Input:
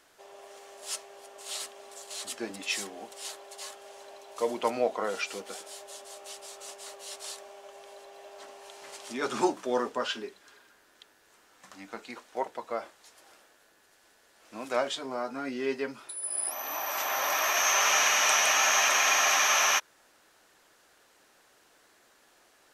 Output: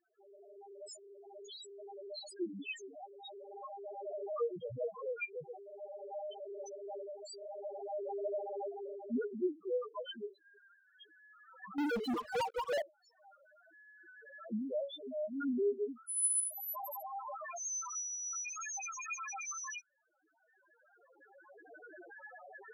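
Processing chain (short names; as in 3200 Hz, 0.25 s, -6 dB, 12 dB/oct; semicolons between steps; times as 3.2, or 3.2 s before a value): 4.03–5.45 octaver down 1 oct, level +1 dB; recorder AGC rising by 14 dB/s; loudest bins only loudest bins 1; 11.78–12.82 sample leveller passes 5; gain -2 dB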